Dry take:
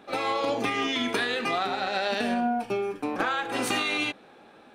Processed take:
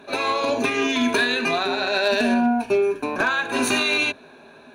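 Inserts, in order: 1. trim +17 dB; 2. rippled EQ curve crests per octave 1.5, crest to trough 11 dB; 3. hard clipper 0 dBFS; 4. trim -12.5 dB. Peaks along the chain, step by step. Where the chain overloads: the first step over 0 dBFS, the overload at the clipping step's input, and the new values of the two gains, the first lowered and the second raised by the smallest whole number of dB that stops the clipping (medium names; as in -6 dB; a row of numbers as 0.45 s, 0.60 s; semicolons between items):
+4.0 dBFS, +6.0 dBFS, 0.0 dBFS, -12.5 dBFS; step 1, 6.0 dB; step 1 +11 dB, step 4 -6.5 dB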